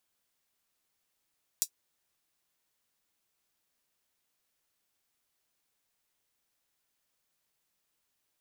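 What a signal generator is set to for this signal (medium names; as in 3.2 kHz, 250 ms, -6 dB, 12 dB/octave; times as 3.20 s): closed hi-hat, high-pass 5.8 kHz, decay 0.08 s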